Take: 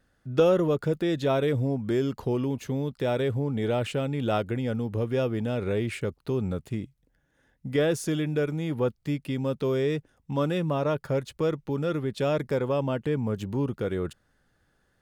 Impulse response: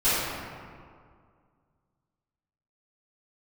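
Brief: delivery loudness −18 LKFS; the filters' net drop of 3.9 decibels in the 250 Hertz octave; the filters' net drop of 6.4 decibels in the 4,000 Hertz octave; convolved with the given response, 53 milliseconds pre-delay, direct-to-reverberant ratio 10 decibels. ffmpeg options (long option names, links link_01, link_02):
-filter_complex "[0:a]equalizer=frequency=250:width_type=o:gain=-5.5,equalizer=frequency=4000:width_type=o:gain=-8.5,asplit=2[link_01][link_02];[1:a]atrim=start_sample=2205,adelay=53[link_03];[link_02][link_03]afir=irnorm=-1:irlink=0,volume=-26.5dB[link_04];[link_01][link_04]amix=inputs=2:normalize=0,volume=11.5dB"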